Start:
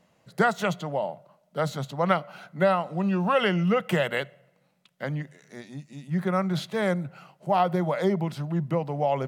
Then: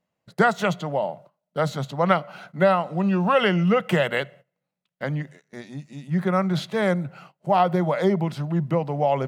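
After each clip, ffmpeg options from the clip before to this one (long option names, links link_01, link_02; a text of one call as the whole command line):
ffmpeg -i in.wav -af "agate=range=-19dB:threshold=-49dB:ratio=16:detection=peak,highshelf=frequency=8100:gain=-5.5,volume=3.5dB" out.wav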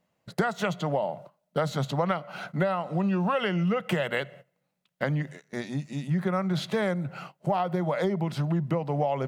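ffmpeg -i in.wav -af "acompressor=threshold=-29dB:ratio=6,volume=5dB" out.wav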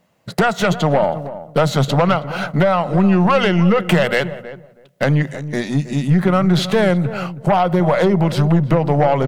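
ffmpeg -i in.wav -filter_complex "[0:a]aeval=exprs='0.316*(cos(1*acos(clip(val(0)/0.316,-1,1)))-cos(1*PI/2))+0.1*(cos(5*acos(clip(val(0)/0.316,-1,1)))-cos(5*PI/2))+0.0282*(cos(8*acos(clip(val(0)/0.316,-1,1)))-cos(8*PI/2))':channel_layout=same,asplit=2[link_01][link_02];[link_02]adelay=321,lowpass=frequency=860:poles=1,volume=-12dB,asplit=2[link_03][link_04];[link_04]adelay=321,lowpass=frequency=860:poles=1,volume=0.19[link_05];[link_01][link_03][link_05]amix=inputs=3:normalize=0,volume=5dB" out.wav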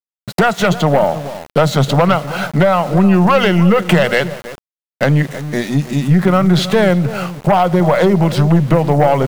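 ffmpeg -i in.wav -af "aeval=exprs='val(0)*gte(abs(val(0)),0.0266)':channel_layout=same,volume=3dB" out.wav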